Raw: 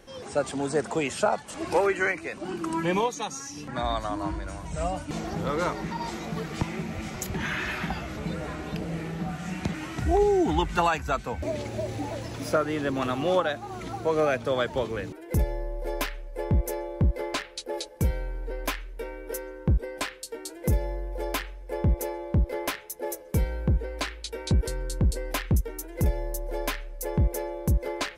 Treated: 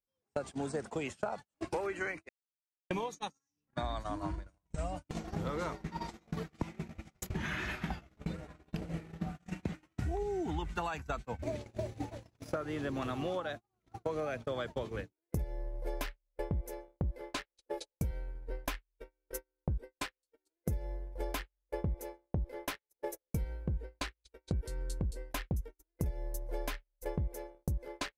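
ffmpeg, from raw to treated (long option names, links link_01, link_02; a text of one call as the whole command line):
ffmpeg -i in.wav -filter_complex "[0:a]asplit=3[link_01][link_02][link_03];[link_01]atrim=end=2.29,asetpts=PTS-STARTPTS,afade=type=out:start_time=2.286:duration=0.004:curve=hsin[link_04];[link_02]atrim=start=2.29:end=2.9,asetpts=PTS-STARTPTS,volume=0[link_05];[link_03]atrim=start=2.9,asetpts=PTS-STARTPTS,afade=type=in:duration=0.004:curve=hsin[link_06];[link_04][link_05][link_06]concat=n=3:v=0:a=1,agate=range=-51dB:threshold=-30dB:ratio=16:detection=peak,lowshelf=frequency=120:gain=7,acompressor=threshold=-35dB:ratio=6,volume=1dB" out.wav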